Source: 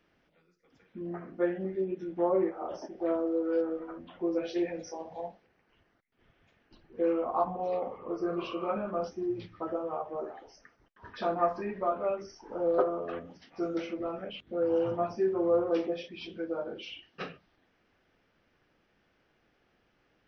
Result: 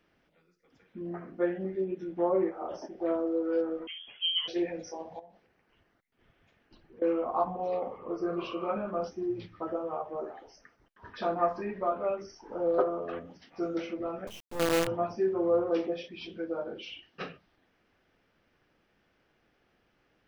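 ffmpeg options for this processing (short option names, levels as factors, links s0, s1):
-filter_complex "[0:a]asettb=1/sr,asplit=3[s0][s1][s2];[s0]atrim=end=3.874[s3];[s1]atrim=start=3.87:end=4.48,asetpts=PTS-STARTPTS,afade=t=in:d=0.004:c=qsin,afade=t=out:st=0.606:d=0.004:c=qsin,lowpass=f=3000:t=q:w=0.5098,lowpass=f=3000:t=q:w=0.6013,lowpass=f=3000:t=q:w=0.9,lowpass=f=3000:t=q:w=2.563,afreqshift=-3500[s4];[s2]atrim=start=4.476[s5];[s3][s4]acrossfade=d=0.004:c1=hsin:c2=qsin[s6];[s6][s5]acrossfade=d=0.004:c1=qsin:c2=hsin,asettb=1/sr,asplit=3[s7][s8][s9];[s7]atrim=end=5.194[s10];[s8]atrim=start=5.19:end=7.02,asetpts=PTS-STARTPTS,afade=t=in:d=0.004:c=qsin,afade=t=out:st=1.826:d=0.004:c=qsin,acompressor=threshold=0.00316:ratio=5:attack=3.2:release=140:knee=1:detection=peak[s11];[s9]atrim=start=7.016[s12];[s10][s11]acrossfade=d=0.004:c1=hsin:c2=qsin[s13];[s13][s12]acrossfade=d=0.004:c1=qsin:c2=hsin,asettb=1/sr,asplit=3[s14][s15][s16];[s14]atrim=end=14.274[s17];[s15]atrim=start=14.27:end=14.87,asetpts=PTS-STARTPTS,afade=t=in:d=0.004:c=qsin,afade=t=out:st=0.596:d=0.004:c=qsin,acrusher=bits=5:dc=4:mix=0:aa=0.000001[s18];[s16]atrim=start=14.866[s19];[s17][s18]acrossfade=d=0.004:c1=hsin:c2=qsin[s20];[s20][s19]acrossfade=d=0.004:c1=qsin:c2=hsin"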